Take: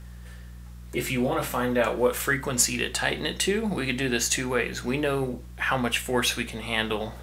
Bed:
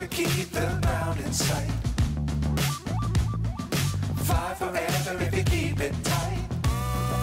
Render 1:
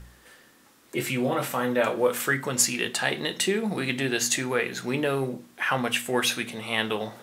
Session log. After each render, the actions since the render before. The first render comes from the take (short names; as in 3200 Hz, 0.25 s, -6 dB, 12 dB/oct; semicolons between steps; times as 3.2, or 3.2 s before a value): de-hum 60 Hz, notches 4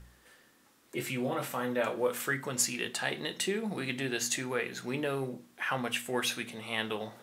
gain -7 dB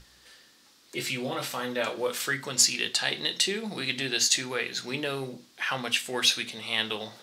bell 4500 Hz +14 dB 1.4 oct; notches 60/120/180/240 Hz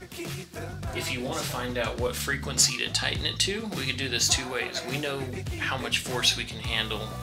add bed -10 dB